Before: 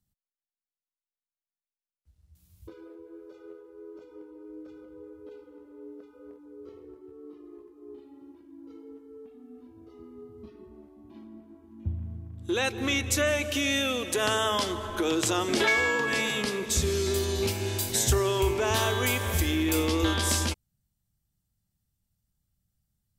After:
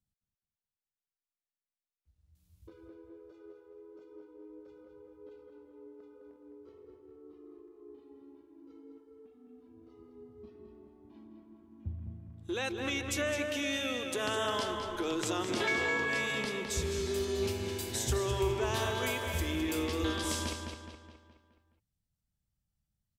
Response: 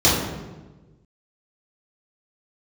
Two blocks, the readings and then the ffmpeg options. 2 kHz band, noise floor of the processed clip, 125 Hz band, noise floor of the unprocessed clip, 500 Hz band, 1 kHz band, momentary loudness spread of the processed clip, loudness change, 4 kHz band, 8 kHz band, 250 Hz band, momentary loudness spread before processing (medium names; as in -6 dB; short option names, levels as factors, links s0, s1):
-6.0 dB, under -85 dBFS, -7.5 dB, under -85 dBFS, -5.5 dB, -6.0 dB, 22 LU, -6.5 dB, -7.0 dB, -9.0 dB, -6.0 dB, 15 LU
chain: -filter_complex "[0:a]highshelf=f=9600:g=-6.5,asplit=2[s0][s1];[s1]adelay=210,lowpass=f=4500:p=1,volume=0.562,asplit=2[s2][s3];[s3]adelay=210,lowpass=f=4500:p=1,volume=0.5,asplit=2[s4][s5];[s5]adelay=210,lowpass=f=4500:p=1,volume=0.5,asplit=2[s6][s7];[s7]adelay=210,lowpass=f=4500:p=1,volume=0.5,asplit=2[s8][s9];[s9]adelay=210,lowpass=f=4500:p=1,volume=0.5,asplit=2[s10][s11];[s11]adelay=210,lowpass=f=4500:p=1,volume=0.5[s12];[s0][s2][s4][s6][s8][s10][s12]amix=inputs=7:normalize=0,volume=0.422"